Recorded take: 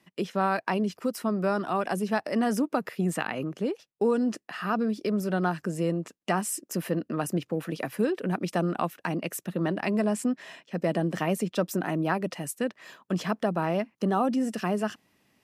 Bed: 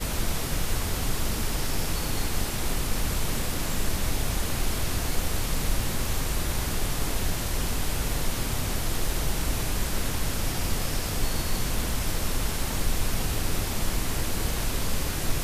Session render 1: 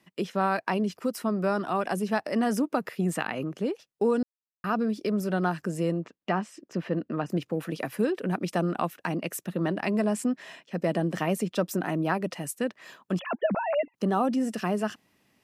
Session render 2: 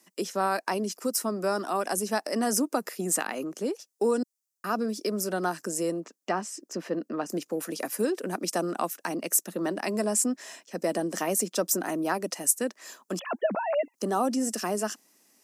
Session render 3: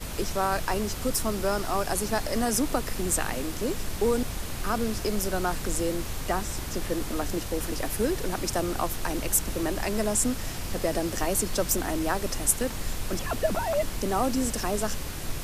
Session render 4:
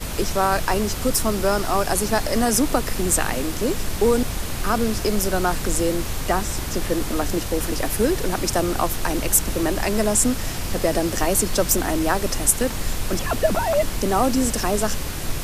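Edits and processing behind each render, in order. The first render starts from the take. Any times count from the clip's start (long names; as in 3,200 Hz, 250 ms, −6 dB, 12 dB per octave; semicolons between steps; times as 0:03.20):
0:04.23–0:04.64: silence; 0:06.00–0:07.30: high-frequency loss of the air 190 metres; 0:13.19–0:13.94: three sine waves on the formant tracks
high-pass filter 230 Hz 24 dB per octave; high shelf with overshoot 4,500 Hz +11.5 dB, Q 1.5
mix in bed −6 dB
level +6.5 dB; brickwall limiter −3 dBFS, peak gain reduction 2.5 dB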